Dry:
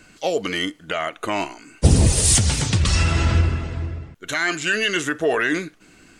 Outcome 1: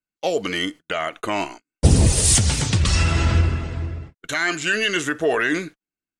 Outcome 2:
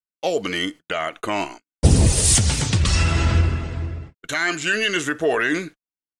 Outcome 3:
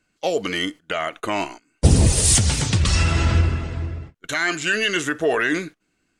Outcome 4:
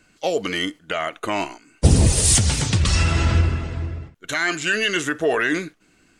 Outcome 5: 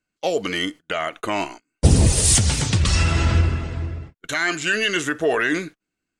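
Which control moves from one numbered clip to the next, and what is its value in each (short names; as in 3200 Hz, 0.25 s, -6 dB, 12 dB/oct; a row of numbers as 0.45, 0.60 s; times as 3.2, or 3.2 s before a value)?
gate, range: -45, -58, -20, -8, -32 dB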